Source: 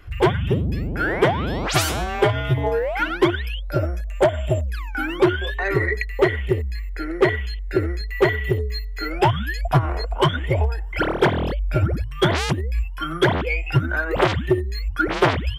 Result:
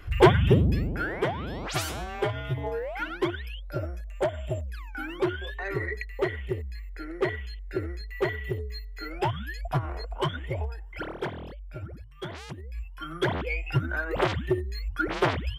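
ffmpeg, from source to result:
-af "volume=4.47,afade=t=out:st=0.62:d=0.47:silence=0.281838,afade=t=out:st=10.3:d=1.36:silence=0.354813,afade=t=in:st=12.46:d=1.08:silence=0.251189"

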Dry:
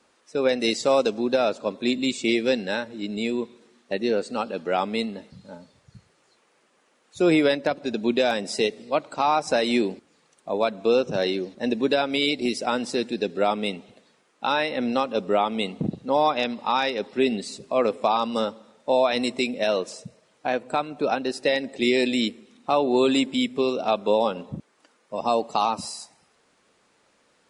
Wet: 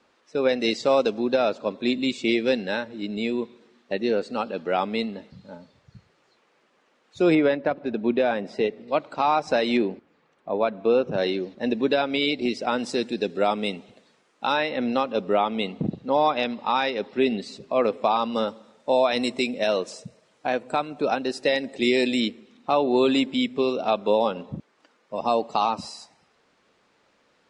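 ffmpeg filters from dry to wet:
-af "asetnsamples=n=441:p=0,asendcmd='7.35 lowpass f 2100;8.88 lowpass f 4200;9.77 lowpass f 2400;11.18 lowpass f 4200;12.79 lowpass f 8400;14.57 lowpass f 4500;18.48 lowpass f 8800;22.2 lowpass f 5200',lowpass=4800"

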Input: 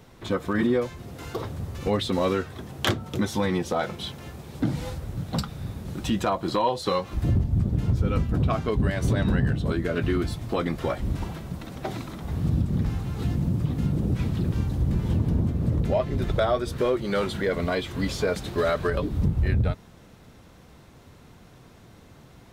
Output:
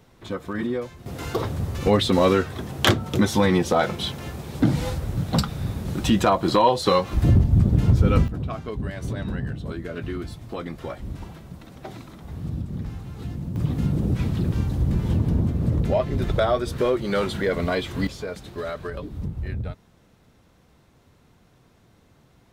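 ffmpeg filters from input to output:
-af "asetnsamples=n=441:p=0,asendcmd='1.06 volume volume 6dB;8.28 volume volume -6dB;13.56 volume volume 2dB;18.07 volume volume -7dB',volume=0.631"

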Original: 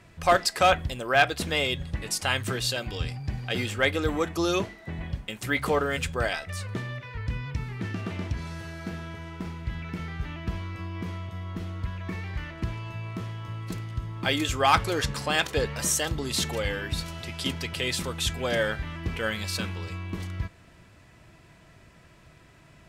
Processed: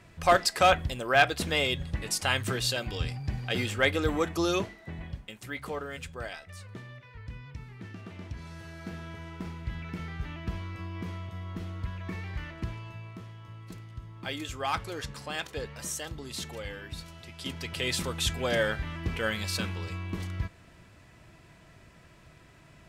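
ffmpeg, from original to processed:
-af "volume=6.31,afade=t=out:st=4.33:d=1.18:silence=0.316228,afade=t=in:st=8.13:d=1.07:silence=0.398107,afade=t=out:st=12.49:d=0.73:silence=0.446684,afade=t=in:st=17.36:d=0.58:silence=0.354813"

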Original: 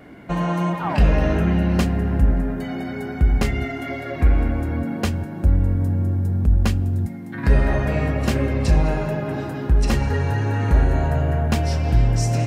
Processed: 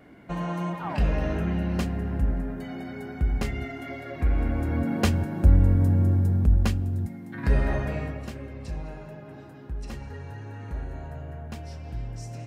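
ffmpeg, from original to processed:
-af "afade=t=in:st=4.26:d=0.79:silence=0.398107,afade=t=out:st=6.13:d=0.66:silence=0.501187,afade=t=out:st=7.73:d=0.59:silence=0.266073"

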